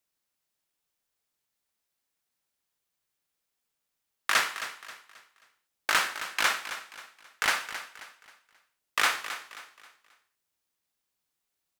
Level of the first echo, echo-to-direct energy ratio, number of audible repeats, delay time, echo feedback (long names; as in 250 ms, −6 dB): −12.0 dB, −11.5 dB, 3, 267 ms, 36%